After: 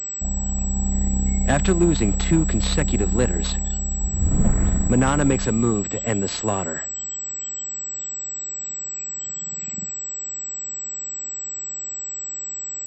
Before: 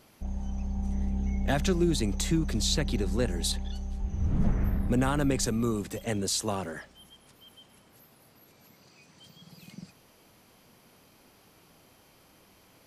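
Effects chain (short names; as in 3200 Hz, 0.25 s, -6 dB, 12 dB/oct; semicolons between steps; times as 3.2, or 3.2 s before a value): 2–2.55 G.711 law mismatch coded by mu; added harmonics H 6 -25 dB, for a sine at -13.5 dBFS; pulse-width modulation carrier 7800 Hz; gain +7.5 dB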